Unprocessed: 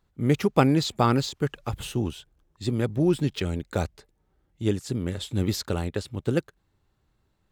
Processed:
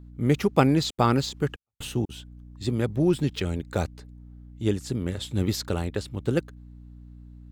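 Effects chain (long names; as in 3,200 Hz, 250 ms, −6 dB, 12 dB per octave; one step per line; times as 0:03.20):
mains hum 60 Hz, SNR 18 dB
0:00.84–0:02.09: gate pattern "xxxxx...xxx.xx" 183 BPM −60 dB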